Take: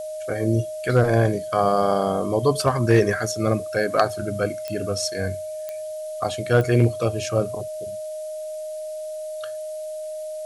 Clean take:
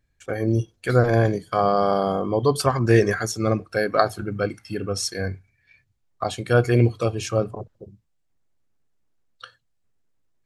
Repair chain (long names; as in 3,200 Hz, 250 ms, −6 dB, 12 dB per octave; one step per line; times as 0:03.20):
clipped peaks rebuilt −7.5 dBFS
click removal
notch filter 620 Hz, Q 30
noise reduction from a noise print 30 dB